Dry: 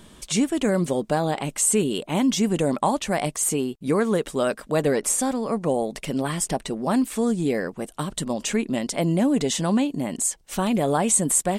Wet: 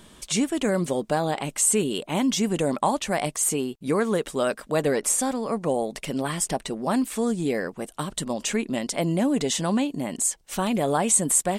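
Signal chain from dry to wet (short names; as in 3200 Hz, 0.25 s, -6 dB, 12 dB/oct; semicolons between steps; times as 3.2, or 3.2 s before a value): low shelf 400 Hz -3.5 dB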